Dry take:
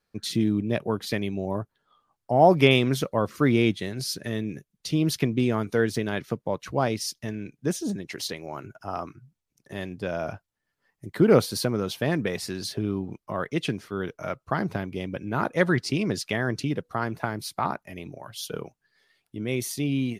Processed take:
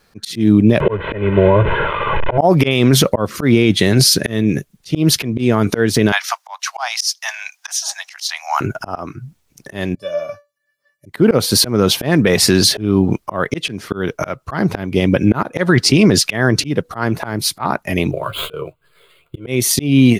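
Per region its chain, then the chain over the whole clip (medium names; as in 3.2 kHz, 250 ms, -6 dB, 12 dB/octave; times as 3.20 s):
0.80–2.38 s: one-bit delta coder 16 kbps, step -33.5 dBFS + treble shelf 2.5 kHz -9.5 dB + comb 2 ms, depth 93%
6.12–8.61 s: steep high-pass 730 Hz 72 dB/octave + peaking EQ 5.6 kHz +8 dB 0.72 oct
9.95–11.06 s: high-pass 110 Hz 24 dB/octave + feedback comb 580 Hz, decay 0.21 s, mix 100%
18.11–19.47 s: median filter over 9 samples + static phaser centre 1.2 kHz, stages 8 + doubling 13 ms -6 dB
whole clip: slow attack 377 ms; loudness maximiser +23 dB; trim -1 dB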